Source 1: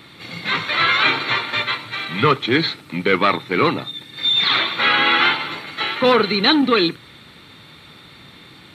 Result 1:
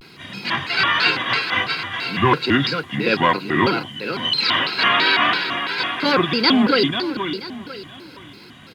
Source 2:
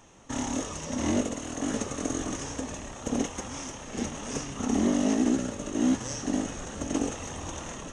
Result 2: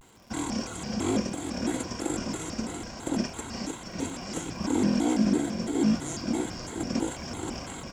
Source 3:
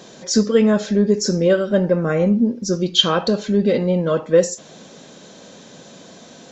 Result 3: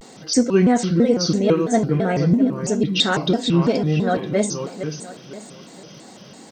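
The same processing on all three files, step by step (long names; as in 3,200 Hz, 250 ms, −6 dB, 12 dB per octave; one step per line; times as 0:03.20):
notch comb filter 520 Hz
surface crackle 240 per second −47 dBFS
repeating echo 484 ms, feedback 35%, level −8.5 dB
pitch modulation by a square or saw wave square 3 Hz, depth 250 cents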